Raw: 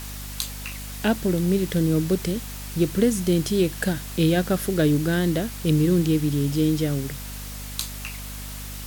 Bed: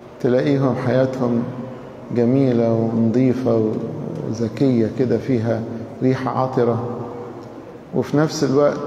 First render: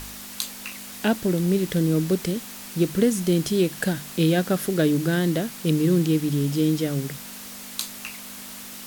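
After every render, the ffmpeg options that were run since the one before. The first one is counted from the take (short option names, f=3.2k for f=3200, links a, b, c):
-af "bandreject=f=50:t=h:w=4,bandreject=f=100:t=h:w=4,bandreject=f=150:t=h:w=4"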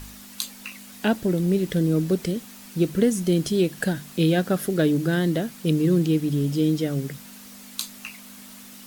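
-af "afftdn=nr=7:nf=-39"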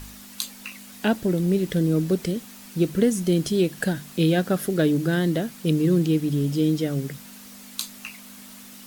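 -af anull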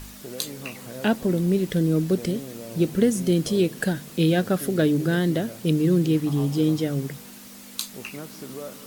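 -filter_complex "[1:a]volume=-21.5dB[a];[0:a][a]amix=inputs=2:normalize=0"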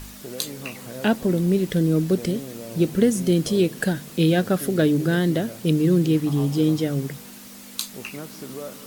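-af "volume=1.5dB"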